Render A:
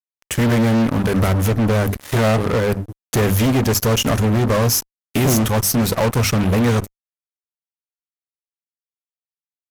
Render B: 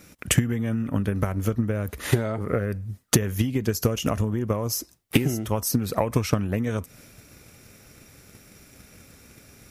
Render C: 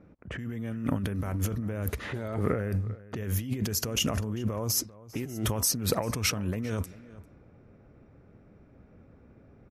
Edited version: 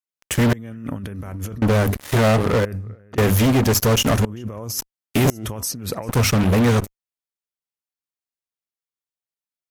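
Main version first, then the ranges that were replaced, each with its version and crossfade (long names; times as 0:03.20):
A
0:00.53–0:01.62: punch in from C
0:02.65–0:03.18: punch in from C
0:04.25–0:04.79: punch in from C
0:05.30–0:06.09: punch in from C
not used: B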